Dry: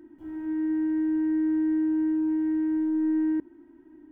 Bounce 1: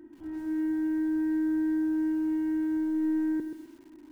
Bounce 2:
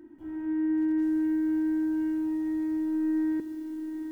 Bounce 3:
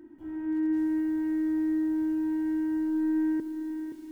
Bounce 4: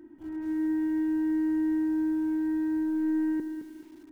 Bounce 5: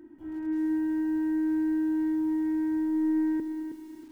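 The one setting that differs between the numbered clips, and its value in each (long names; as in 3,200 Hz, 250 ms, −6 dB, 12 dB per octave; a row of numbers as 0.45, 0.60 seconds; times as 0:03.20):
feedback echo at a low word length, delay time: 129, 777, 522, 215, 318 milliseconds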